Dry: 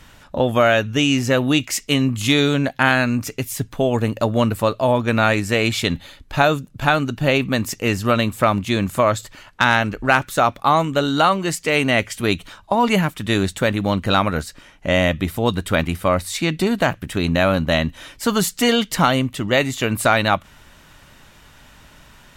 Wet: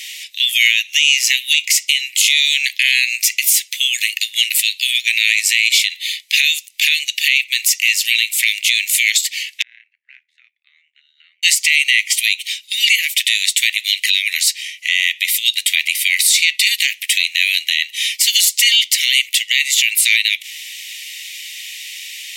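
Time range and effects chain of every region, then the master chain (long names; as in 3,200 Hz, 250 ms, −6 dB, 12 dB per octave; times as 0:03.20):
0:09.62–0:11.43: flat-topped band-pass 960 Hz, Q 4.2 + amplitude modulation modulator 79 Hz, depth 60%
whole clip: Butterworth high-pass 2,000 Hz 96 dB per octave; downward compressor 6 to 1, threshold −30 dBFS; boost into a limiter +23.5 dB; level −1 dB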